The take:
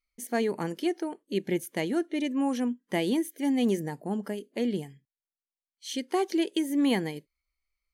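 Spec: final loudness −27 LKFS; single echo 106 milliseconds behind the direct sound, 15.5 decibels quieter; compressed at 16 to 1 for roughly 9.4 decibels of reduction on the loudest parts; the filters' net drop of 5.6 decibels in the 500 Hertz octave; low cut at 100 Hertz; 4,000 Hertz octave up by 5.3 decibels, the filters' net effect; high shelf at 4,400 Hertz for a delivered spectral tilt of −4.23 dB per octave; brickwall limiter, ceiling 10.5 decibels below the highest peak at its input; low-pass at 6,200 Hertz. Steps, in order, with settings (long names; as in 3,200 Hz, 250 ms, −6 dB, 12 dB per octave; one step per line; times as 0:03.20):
high-pass filter 100 Hz
low-pass filter 6,200 Hz
parametric band 500 Hz −8.5 dB
parametric band 4,000 Hz +5 dB
high-shelf EQ 4,400 Hz +6 dB
downward compressor 16 to 1, threshold −33 dBFS
brickwall limiter −29 dBFS
single-tap delay 106 ms −15.5 dB
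level +12.5 dB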